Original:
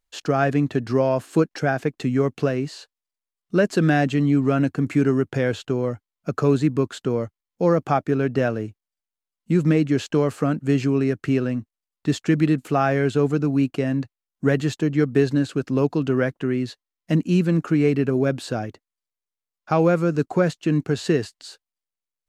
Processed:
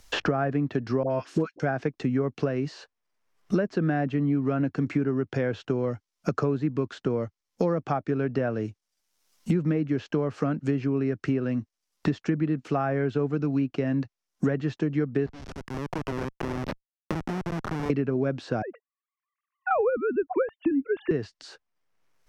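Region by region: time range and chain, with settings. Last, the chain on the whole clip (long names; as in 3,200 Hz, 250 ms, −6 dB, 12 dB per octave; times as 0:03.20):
0:01.03–0:01.60: high-pass filter 49 Hz + all-pass dispersion highs, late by 74 ms, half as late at 990 Hz
0:15.26–0:17.90: meter weighting curve A + downward compressor 10 to 1, threshold −33 dBFS + comparator with hysteresis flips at −33.5 dBFS
0:18.62–0:21.11: three sine waves on the formant tracks + low-pass filter 1,800 Hz
whole clip: parametric band 5,600 Hz +8 dB 0.44 octaves; treble cut that deepens with the level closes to 1,700 Hz, closed at −15.5 dBFS; multiband upward and downward compressor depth 100%; level −6 dB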